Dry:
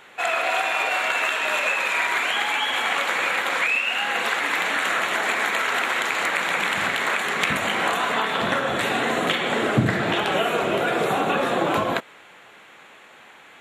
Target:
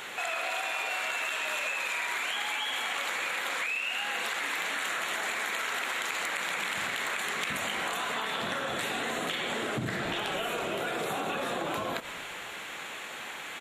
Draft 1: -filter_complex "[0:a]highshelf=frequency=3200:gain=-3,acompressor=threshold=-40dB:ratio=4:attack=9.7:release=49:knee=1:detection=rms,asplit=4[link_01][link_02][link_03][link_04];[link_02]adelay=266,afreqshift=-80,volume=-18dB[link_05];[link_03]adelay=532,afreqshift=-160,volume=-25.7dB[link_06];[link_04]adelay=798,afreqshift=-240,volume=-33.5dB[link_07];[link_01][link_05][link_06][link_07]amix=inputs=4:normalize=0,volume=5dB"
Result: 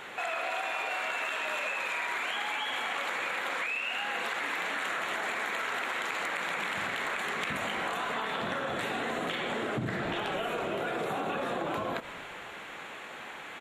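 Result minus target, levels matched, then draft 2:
8,000 Hz band −7.0 dB
-filter_complex "[0:a]highshelf=frequency=3200:gain=9,acompressor=threshold=-40dB:ratio=4:attack=9.7:release=49:knee=1:detection=rms,asplit=4[link_01][link_02][link_03][link_04];[link_02]adelay=266,afreqshift=-80,volume=-18dB[link_05];[link_03]adelay=532,afreqshift=-160,volume=-25.7dB[link_06];[link_04]adelay=798,afreqshift=-240,volume=-33.5dB[link_07];[link_01][link_05][link_06][link_07]amix=inputs=4:normalize=0,volume=5dB"

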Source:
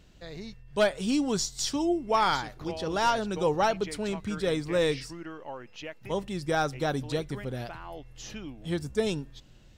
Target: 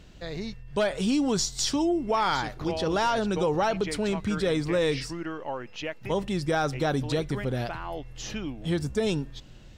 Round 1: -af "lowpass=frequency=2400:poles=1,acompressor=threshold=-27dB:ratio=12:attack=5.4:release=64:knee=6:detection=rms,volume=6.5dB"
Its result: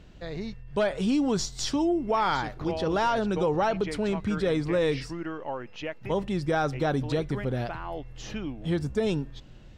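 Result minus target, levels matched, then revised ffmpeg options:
8,000 Hz band −5.5 dB
-af "lowpass=frequency=7600:poles=1,acompressor=threshold=-27dB:ratio=12:attack=5.4:release=64:knee=6:detection=rms,volume=6.5dB"

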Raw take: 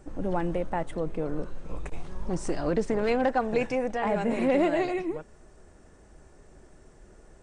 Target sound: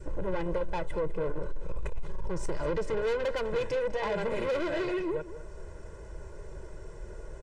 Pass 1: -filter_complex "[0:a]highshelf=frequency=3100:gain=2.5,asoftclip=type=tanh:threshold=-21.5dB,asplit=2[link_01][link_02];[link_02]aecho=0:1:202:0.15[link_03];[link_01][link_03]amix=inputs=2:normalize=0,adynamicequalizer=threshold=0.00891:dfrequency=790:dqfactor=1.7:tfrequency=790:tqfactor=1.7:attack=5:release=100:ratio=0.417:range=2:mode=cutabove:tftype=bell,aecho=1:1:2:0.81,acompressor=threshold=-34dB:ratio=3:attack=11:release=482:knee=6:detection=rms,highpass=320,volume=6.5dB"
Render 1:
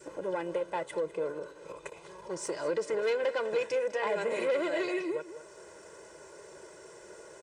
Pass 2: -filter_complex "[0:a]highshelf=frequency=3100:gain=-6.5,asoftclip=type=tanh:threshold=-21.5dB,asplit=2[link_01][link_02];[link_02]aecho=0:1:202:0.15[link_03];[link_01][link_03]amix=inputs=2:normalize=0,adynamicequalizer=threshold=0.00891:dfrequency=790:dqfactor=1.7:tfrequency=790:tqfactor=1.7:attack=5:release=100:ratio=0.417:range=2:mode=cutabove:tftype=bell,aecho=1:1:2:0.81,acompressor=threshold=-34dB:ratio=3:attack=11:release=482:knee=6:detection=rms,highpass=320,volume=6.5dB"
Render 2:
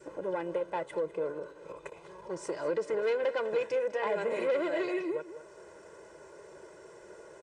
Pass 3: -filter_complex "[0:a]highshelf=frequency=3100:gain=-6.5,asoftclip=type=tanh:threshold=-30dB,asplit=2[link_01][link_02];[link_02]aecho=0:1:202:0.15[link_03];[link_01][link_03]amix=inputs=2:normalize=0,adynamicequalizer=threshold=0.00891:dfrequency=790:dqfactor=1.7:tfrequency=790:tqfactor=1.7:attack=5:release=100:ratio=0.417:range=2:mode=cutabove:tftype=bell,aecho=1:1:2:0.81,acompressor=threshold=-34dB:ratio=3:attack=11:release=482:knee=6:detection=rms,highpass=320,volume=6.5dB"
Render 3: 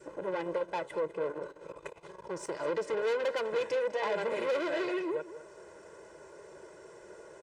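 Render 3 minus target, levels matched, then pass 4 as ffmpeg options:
250 Hz band −3.0 dB
-filter_complex "[0:a]highshelf=frequency=3100:gain=-6.5,asoftclip=type=tanh:threshold=-30dB,asplit=2[link_01][link_02];[link_02]aecho=0:1:202:0.15[link_03];[link_01][link_03]amix=inputs=2:normalize=0,adynamicequalizer=threshold=0.00891:dfrequency=790:dqfactor=1.7:tfrequency=790:tqfactor=1.7:attack=5:release=100:ratio=0.417:range=2:mode=cutabove:tftype=bell,aecho=1:1:2:0.81,acompressor=threshold=-34dB:ratio=3:attack=11:release=482:knee=6:detection=rms,volume=6.5dB"

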